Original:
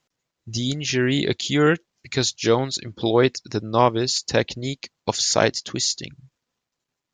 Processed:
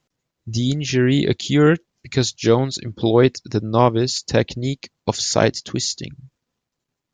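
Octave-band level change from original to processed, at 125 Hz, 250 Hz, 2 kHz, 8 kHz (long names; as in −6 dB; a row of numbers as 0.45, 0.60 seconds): +6.5, +4.5, −0.5, −1.0 decibels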